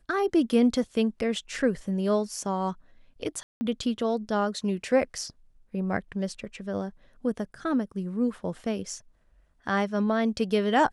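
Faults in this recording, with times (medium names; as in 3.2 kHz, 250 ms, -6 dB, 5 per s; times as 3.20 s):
3.43–3.61 s: dropout 180 ms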